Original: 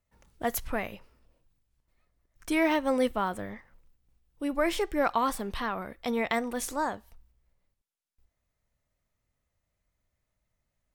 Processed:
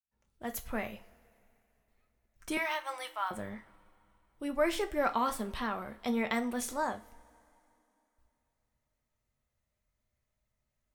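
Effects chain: fade-in on the opening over 0.88 s; 2.57–3.31 s: high-pass 810 Hz 24 dB/octave; reverberation, pre-delay 3 ms, DRR 6.5 dB; trim -4 dB

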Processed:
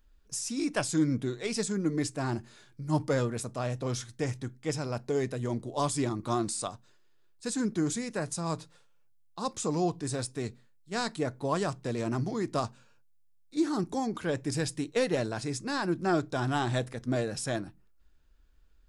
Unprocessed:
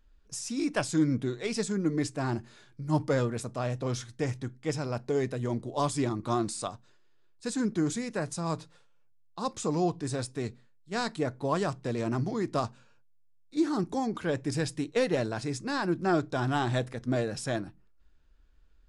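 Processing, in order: treble shelf 7.6 kHz +8 dB; trim -1 dB

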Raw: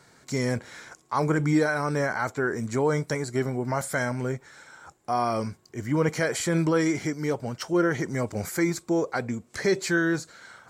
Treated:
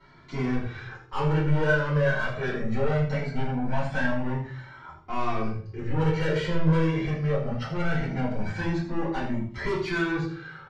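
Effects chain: low-pass 3.9 kHz 24 dB/octave; peaking EQ 110 Hz +6 dB 1.4 oct; saturation -25.5 dBFS, distortion -9 dB; on a send: delay 80 ms -11 dB; on the sum: simulated room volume 30 m³, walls mixed, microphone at 2 m; Shepard-style flanger rising 0.21 Hz; trim -4.5 dB

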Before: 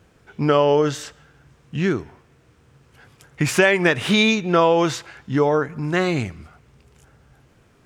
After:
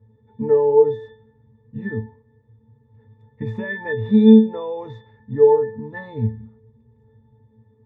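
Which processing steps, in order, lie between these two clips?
tilt shelf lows +6.5 dB, about 1.4 kHz; pitch-class resonator A, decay 0.34 s; trim +7.5 dB

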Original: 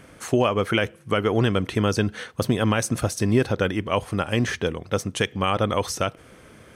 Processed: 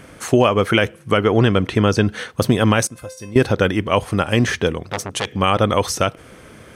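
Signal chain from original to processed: 1.17–2.09 s: treble shelf 8.5 kHz -11 dB; 2.87–3.36 s: feedback comb 520 Hz, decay 0.33 s, mix 90%; 4.86–5.32 s: transformer saturation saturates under 2.5 kHz; trim +6 dB

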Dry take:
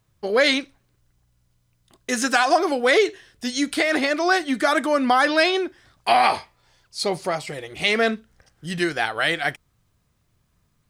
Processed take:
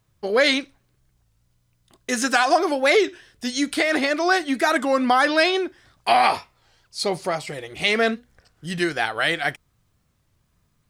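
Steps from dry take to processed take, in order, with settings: warped record 33 1/3 rpm, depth 160 cents

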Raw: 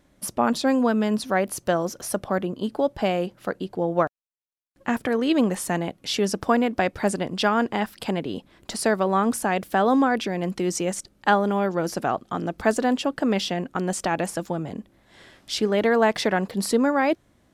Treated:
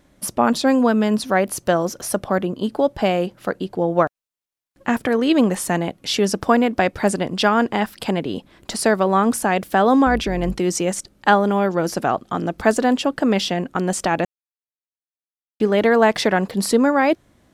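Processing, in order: 10.06–10.59 s: octave divider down 2 oct, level -4 dB; 14.25–15.60 s: mute; trim +4.5 dB

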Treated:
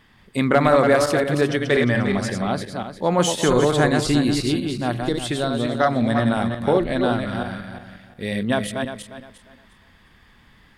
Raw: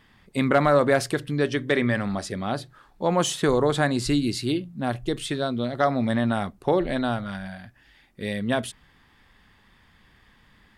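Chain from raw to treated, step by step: backward echo that repeats 177 ms, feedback 48%, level -4.5 dB; trim +2.5 dB

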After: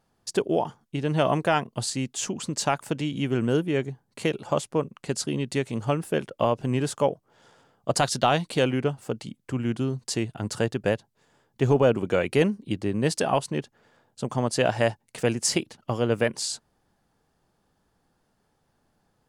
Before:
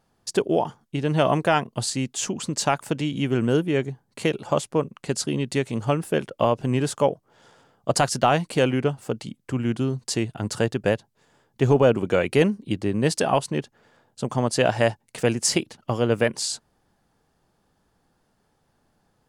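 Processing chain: 8.01–8.63 s: peaking EQ 3.7 kHz +12 dB -> +6 dB 0.44 oct; trim -2.5 dB

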